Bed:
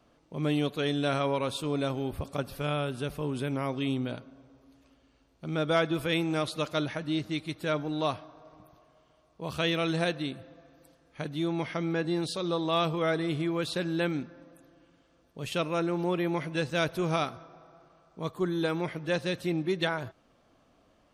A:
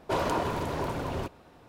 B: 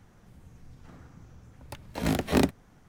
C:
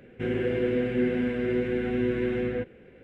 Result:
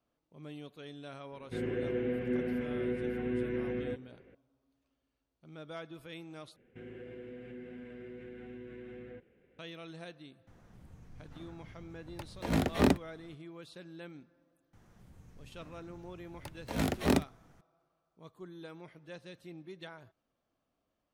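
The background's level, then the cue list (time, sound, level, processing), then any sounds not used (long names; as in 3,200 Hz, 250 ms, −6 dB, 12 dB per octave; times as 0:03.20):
bed −18.5 dB
0:01.32: mix in C −7.5 dB + Bessel low-pass filter 2,900 Hz
0:06.56: overwrite with C −15.5 dB + downward compressor 3 to 1, threshold −29 dBFS
0:10.47: mix in B −2.5 dB + high-shelf EQ 4,700 Hz −5.5 dB
0:14.73: mix in B −4.5 dB
not used: A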